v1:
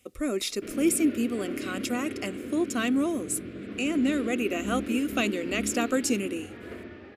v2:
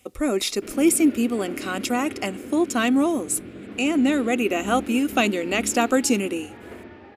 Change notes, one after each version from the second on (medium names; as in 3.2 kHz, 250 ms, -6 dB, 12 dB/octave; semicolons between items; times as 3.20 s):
speech +5.5 dB; master: add peaking EQ 850 Hz +13.5 dB 0.32 oct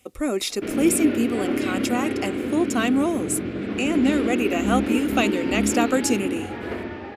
speech: send -8.0 dB; background +10.0 dB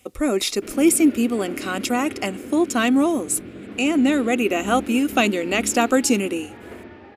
speech +3.5 dB; background -8.5 dB